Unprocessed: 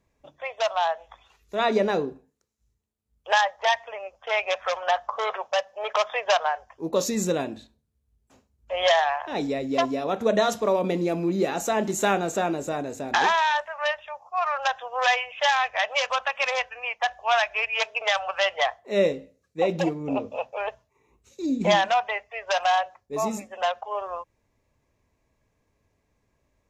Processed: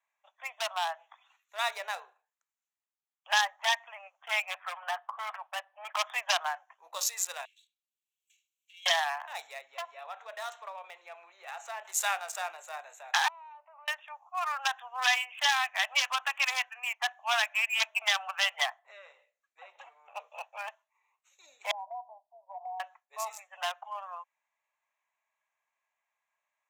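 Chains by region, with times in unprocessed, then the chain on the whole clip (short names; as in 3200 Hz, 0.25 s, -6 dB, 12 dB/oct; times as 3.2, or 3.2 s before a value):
4.46–5.97 HPF 450 Hz 6 dB/oct + air absorption 270 m
7.45–8.86 minimum comb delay 1.8 ms + steep high-pass 2500 Hz 48 dB/oct + three-band squash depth 70%
9.61–11.85 compressor 2:1, threshold -27 dBFS + air absorption 98 m
13.28–13.88 running mean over 26 samples + compressor 8:1, threshold -40 dBFS
18.79–20.15 high shelf 10000 Hz -11 dB + compressor 3:1, threshold -34 dBFS + core saturation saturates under 400 Hz
21.71–22.8 rippled Chebyshev low-pass 1000 Hz, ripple 9 dB + compressor 4:1, threshold -27 dBFS
whole clip: Wiener smoothing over 9 samples; steep high-pass 710 Hz 36 dB/oct; tilt +3.5 dB/oct; gain -6 dB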